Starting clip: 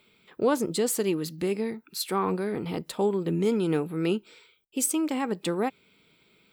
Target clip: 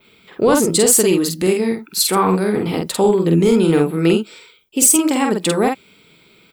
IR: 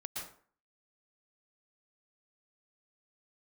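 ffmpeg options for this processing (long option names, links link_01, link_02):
-filter_complex "[0:a]asplit=2[link_01][link_02];[link_02]adelay=48,volume=-3.5dB[link_03];[link_01][link_03]amix=inputs=2:normalize=0,adynamicequalizer=threshold=0.00501:dfrequency=8500:dqfactor=0.75:tfrequency=8500:tqfactor=0.75:attack=5:release=100:ratio=0.375:range=4:mode=boostabove:tftype=bell,apsyclip=16dB,volume=-6dB"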